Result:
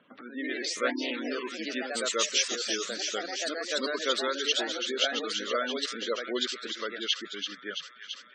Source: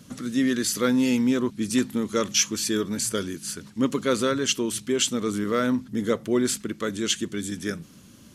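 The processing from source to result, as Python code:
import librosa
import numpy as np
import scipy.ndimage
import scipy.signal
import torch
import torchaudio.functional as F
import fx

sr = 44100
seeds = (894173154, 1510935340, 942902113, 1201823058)

y = fx.wiener(x, sr, points=9)
y = scipy.signal.sosfilt(scipy.signal.butter(2, 600.0, 'highpass', fs=sr, output='sos'), y)
y = fx.dereverb_blind(y, sr, rt60_s=0.52)
y = scipy.signal.sosfilt(scipy.signal.butter(4, 5000.0, 'lowpass', fs=sr, output='sos'), y)
y = fx.peak_eq(y, sr, hz=1000.0, db=-2.5, octaves=1.7)
y = fx.echo_wet_highpass(y, sr, ms=335, feedback_pct=78, hz=1800.0, wet_db=-6.5)
y = fx.echo_pitch(y, sr, ms=97, semitones=2, count=3, db_per_echo=-3.0)
y = fx.spec_gate(y, sr, threshold_db=-20, keep='strong')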